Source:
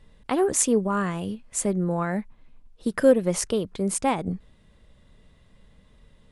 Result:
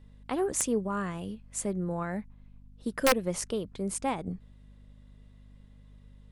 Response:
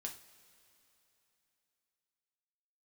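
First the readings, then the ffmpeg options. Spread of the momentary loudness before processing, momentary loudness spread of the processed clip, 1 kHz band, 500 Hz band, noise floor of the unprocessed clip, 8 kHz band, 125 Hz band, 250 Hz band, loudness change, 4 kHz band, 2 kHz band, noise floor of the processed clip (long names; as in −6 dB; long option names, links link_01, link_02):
12 LU, 13 LU, −5.0 dB, −8.0 dB, −57 dBFS, −6.5 dB, −6.5 dB, −7.5 dB, −7.0 dB, −1.5 dB, −2.0 dB, −56 dBFS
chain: -af "aeval=exprs='val(0)+0.00562*(sin(2*PI*50*n/s)+sin(2*PI*2*50*n/s)/2+sin(2*PI*3*50*n/s)/3+sin(2*PI*4*50*n/s)/4+sin(2*PI*5*50*n/s)/5)':channel_layout=same,aeval=exprs='(mod(2.51*val(0)+1,2)-1)/2.51':channel_layout=same,volume=-7dB"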